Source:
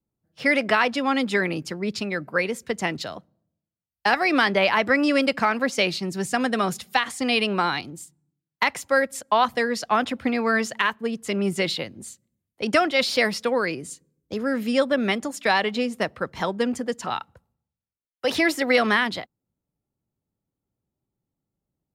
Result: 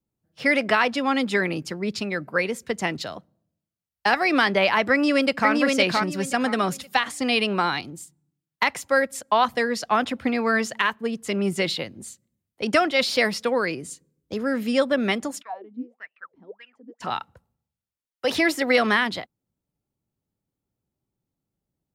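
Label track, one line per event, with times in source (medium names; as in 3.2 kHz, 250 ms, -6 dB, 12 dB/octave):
4.920000	5.510000	echo throw 520 ms, feedback 25%, level -2.5 dB
15.410000	17.000000	wah-wah 0.87 Hz -> 3 Hz 240–2800 Hz, Q 17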